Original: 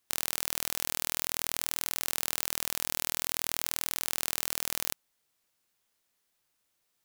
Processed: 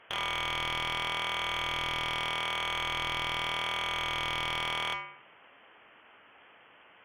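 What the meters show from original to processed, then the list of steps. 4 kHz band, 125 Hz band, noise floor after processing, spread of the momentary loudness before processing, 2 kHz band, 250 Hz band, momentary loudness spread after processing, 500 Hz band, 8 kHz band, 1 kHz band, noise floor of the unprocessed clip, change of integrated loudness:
+5.5 dB, +6.5 dB, −58 dBFS, 0 LU, +8.0 dB, +1.5 dB, 0 LU, +4.5 dB, −16.0 dB, +11.0 dB, −78 dBFS, 0.0 dB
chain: high-pass filter 71 Hz 12 dB per octave
hum removal 210.2 Hz, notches 15
voice inversion scrambler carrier 3,300 Hz
mid-hump overdrive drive 37 dB, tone 1,400 Hz, clips at −20 dBFS
level +2.5 dB

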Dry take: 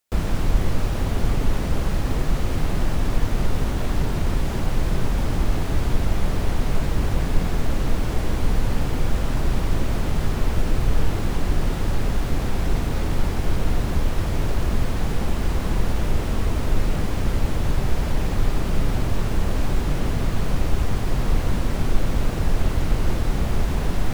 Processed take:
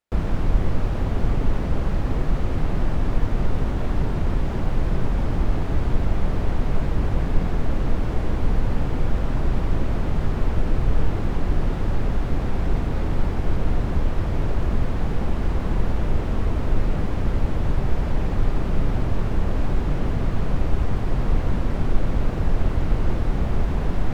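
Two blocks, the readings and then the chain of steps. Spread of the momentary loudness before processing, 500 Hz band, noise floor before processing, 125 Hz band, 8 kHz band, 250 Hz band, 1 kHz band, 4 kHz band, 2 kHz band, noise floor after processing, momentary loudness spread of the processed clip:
1 LU, −0.5 dB, −25 dBFS, 0.0 dB, below −10 dB, 0.0 dB, −1.0 dB, −7.5 dB, −3.5 dB, −25 dBFS, 1 LU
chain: low-pass filter 1,700 Hz 6 dB per octave

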